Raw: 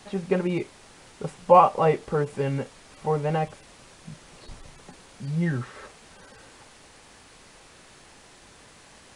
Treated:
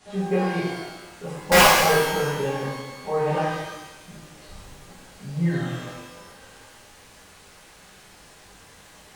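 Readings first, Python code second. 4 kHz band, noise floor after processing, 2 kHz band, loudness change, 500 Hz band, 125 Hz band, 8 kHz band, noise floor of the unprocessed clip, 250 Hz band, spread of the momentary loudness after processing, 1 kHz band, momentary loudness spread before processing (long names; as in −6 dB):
+17.5 dB, −50 dBFS, +14.0 dB, +2.5 dB, +0.5 dB, +0.5 dB, +17.5 dB, −52 dBFS, +2.0 dB, 22 LU, 0.0 dB, 21 LU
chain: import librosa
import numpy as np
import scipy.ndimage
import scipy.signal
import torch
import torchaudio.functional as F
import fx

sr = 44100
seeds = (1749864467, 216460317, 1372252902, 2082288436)

y = (np.mod(10.0 ** (7.0 / 20.0) * x + 1.0, 2.0) - 1.0) / 10.0 ** (7.0 / 20.0)
y = fx.rev_shimmer(y, sr, seeds[0], rt60_s=1.0, semitones=12, shimmer_db=-8, drr_db=-10.0)
y = y * 10.0 ** (-9.0 / 20.0)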